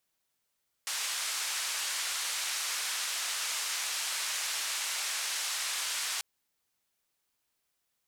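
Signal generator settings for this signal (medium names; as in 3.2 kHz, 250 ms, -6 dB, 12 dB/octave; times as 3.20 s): noise band 1.1–8.4 kHz, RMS -34 dBFS 5.34 s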